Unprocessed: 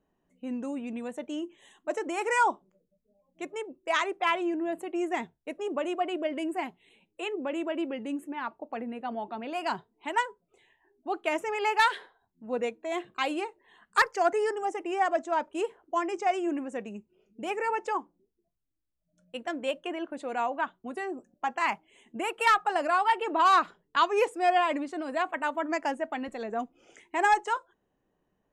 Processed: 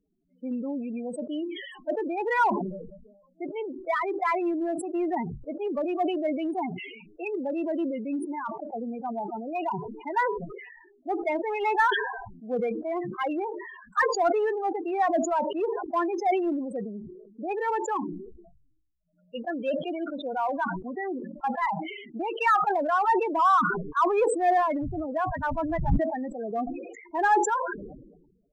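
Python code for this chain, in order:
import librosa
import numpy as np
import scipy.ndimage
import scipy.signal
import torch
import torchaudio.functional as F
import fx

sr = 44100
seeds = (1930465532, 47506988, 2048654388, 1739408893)

p1 = fx.dmg_wind(x, sr, seeds[0], corner_hz=140.0, level_db=-27.0, at=(24.82, 25.96), fade=0.02)
p2 = fx.spec_topn(p1, sr, count=8)
p3 = np.clip(10.0 ** (28.0 / 20.0) * p2, -1.0, 1.0) / 10.0 ** (28.0 / 20.0)
p4 = p2 + (p3 * 10.0 ** (-9.0 / 20.0))
y = fx.sustainer(p4, sr, db_per_s=52.0)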